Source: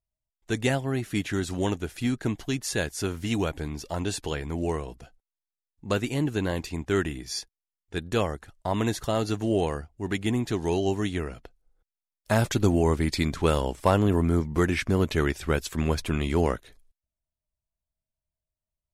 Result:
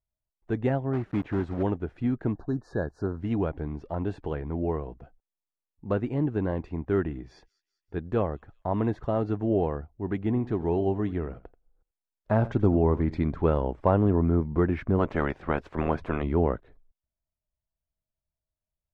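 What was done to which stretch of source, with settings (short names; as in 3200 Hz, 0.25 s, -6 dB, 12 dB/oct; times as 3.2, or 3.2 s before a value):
0.93–1.63 block floating point 3-bit
2.33–3.2 spectral delete 1800–3700 Hz
6.81–9.3 thin delay 0.194 s, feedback 51%, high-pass 5200 Hz, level -15 dB
10.21–13.17 echo 84 ms -17.5 dB
14.98–16.22 spectral limiter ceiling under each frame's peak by 17 dB
whole clip: LPF 1100 Hz 12 dB/oct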